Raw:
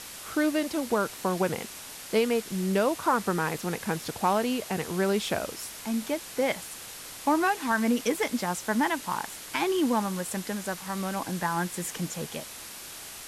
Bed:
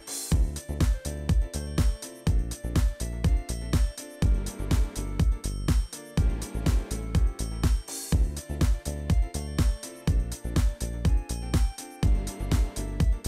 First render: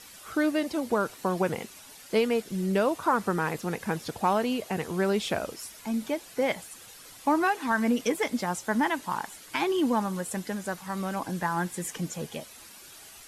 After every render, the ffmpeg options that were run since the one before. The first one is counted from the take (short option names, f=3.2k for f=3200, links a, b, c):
-af "afftdn=nr=10:nf=-43"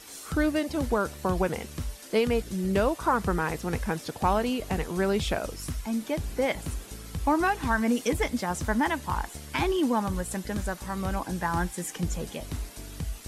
-filter_complex "[1:a]volume=-10dB[a];[0:a][a]amix=inputs=2:normalize=0"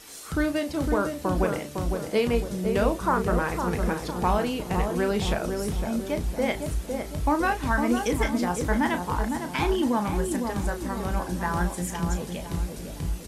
-filter_complex "[0:a]asplit=2[a][b];[b]adelay=34,volume=-9dB[c];[a][c]amix=inputs=2:normalize=0,asplit=2[d][e];[e]adelay=507,lowpass=f=990:p=1,volume=-4dB,asplit=2[f][g];[g]adelay=507,lowpass=f=990:p=1,volume=0.52,asplit=2[h][i];[i]adelay=507,lowpass=f=990:p=1,volume=0.52,asplit=2[j][k];[k]adelay=507,lowpass=f=990:p=1,volume=0.52,asplit=2[l][m];[m]adelay=507,lowpass=f=990:p=1,volume=0.52,asplit=2[n][o];[o]adelay=507,lowpass=f=990:p=1,volume=0.52,asplit=2[p][q];[q]adelay=507,lowpass=f=990:p=1,volume=0.52[r];[d][f][h][j][l][n][p][r]amix=inputs=8:normalize=0"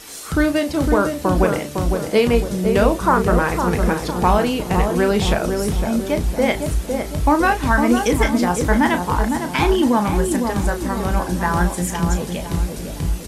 -af "volume=8dB,alimiter=limit=-3dB:level=0:latency=1"